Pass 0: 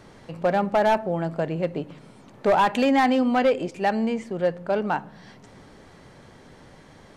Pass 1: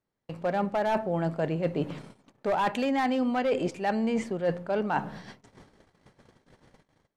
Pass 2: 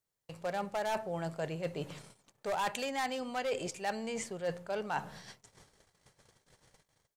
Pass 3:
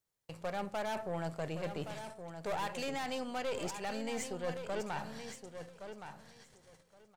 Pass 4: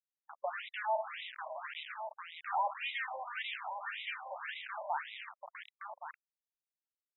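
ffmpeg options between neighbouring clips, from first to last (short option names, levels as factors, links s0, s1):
-af "dynaudnorm=f=260:g=3:m=1.78,agate=range=0.0141:threshold=0.01:ratio=16:detection=peak,areverse,acompressor=threshold=0.0631:ratio=10,areverse"
-af "firequalizer=gain_entry='entry(130,0);entry(250,-9);entry(430,-1);entry(7100,14)':delay=0.05:min_phase=1,volume=0.447"
-af "alimiter=level_in=1.41:limit=0.0631:level=0:latency=1:release=25,volume=0.708,aeval=exprs='(tanh(44.7*val(0)+0.55)-tanh(0.55))/44.7':c=same,aecho=1:1:1119|2238|3357:0.355|0.0603|0.0103,volume=1.26"
-af "aresample=11025,acrusher=bits=6:mix=0:aa=0.000001,aresample=44100,afftfilt=real='re*between(b*sr/1024,730*pow(2800/730,0.5+0.5*sin(2*PI*1.8*pts/sr))/1.41,730*pow(2800/730,0.5+0.5*sin(2*PI*1.8*pts/sr))*1.41)':imag='im*between(b*sr/1024,730*pow(2800/730,0.5+0.5*sin(2*PI*1.8*pts/sr))/1.41,730*pow(2800/730,0.5+0.5*sin(2*PI*1.8*pts/sr))*1.41)':win_size=1024:overlap=0.75,volume=2.11"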